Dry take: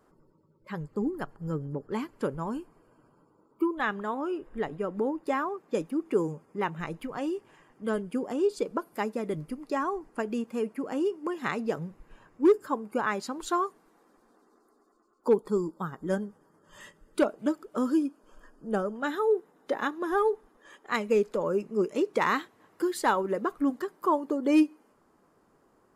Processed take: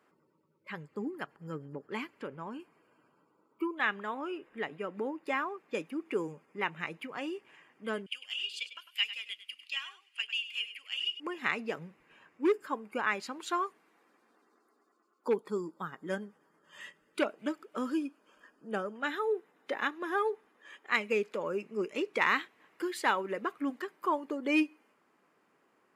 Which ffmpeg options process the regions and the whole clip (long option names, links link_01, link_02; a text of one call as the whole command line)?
ffmpeg -i in.wav -filter_complex "[0:a]asettb=1/sr,asplit=3[link_01][link_02][link_03];[link_01]atrim=end=2.194[link_04];[link_02]atrim=start=2.19:end=2.6,asetpts=PTS-STARTPTS,afade=type=in:duration=0.004:curve=qsin,afade=type=out:start_time=0.406:duration=0.004:curve=qsin,lowpass=frequency=3300:poles=1,acompressor=threshold=-32dB:ratio=2:attack=3.2:release=140:knee=1:detection=peak[link_05];[link_03]atrim=start=2.596[link_06];[link_04][link_05]acrossfade=duration=0.004:curve1=hsin:curve2=qsin[link_07];[link_07][link_06]acrossfade=duration=0.004:curve1=qsin:curve2=hsin,asettb=1/sr,asplit=3[link_08][link_09][link_10];[link_08]atrim=end=8.064[link_11];[link_09]atrim=start=8.06:end=11.2,asetpts=PTS-STARTPTS,afade=type=in:duration=0.004:curve=qsin,afade=type=out:start_time=3.136:duration=0.004:curve=qsin,highpass=frequency=3000:width_type=q:width=9.2,aecho=1:1:100:0.237,atrim=end_sample=138474[link_12];[link_10]atrim=start=11.196[link_13];[link_11][link_12]acrossfade=duration=0.004:curve1=hsin:curve2=qsin[link_14];[link_14][link_13]acrossfade=duration=0.004:curve1=qsin:curve2=hsin,highpass=170,equalizer=frequency=2400:width=1.1:gain=13.5,volume=-7dB" out.wav